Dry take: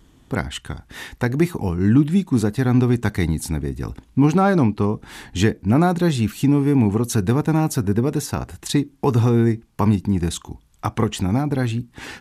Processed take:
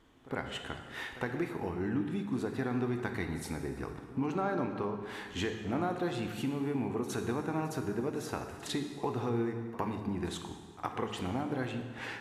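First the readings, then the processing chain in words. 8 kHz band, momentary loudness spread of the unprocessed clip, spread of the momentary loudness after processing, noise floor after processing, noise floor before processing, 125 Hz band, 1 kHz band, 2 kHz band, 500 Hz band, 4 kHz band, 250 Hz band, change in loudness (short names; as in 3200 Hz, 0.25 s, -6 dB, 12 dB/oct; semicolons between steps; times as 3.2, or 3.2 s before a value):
-16.0 dB, 12 LU, 7 LU, -49 dBFS, -55 dBFS, -19.5 dB, -11.5 dB, -10.0 dB, -11.5 dB, -10.5 dB, -16.0 dB, -15.5 dB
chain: tone controls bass -12 dB, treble -11 dB; compressor 2.5:1, threshold -30 dBFS, peak gain reduction 10.5 dB; on a send: reverse echo 61 ms -16.5 dB; on the sum: plate-style reverb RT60 1.8 s, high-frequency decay 0.8×, DRR 5 dB; gain -4.5 dB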